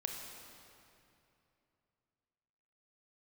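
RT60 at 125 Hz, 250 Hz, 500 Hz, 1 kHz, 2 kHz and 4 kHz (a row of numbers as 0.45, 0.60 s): 3.5, 3.1, 2.9, 2.7, 2.5, 2.1 s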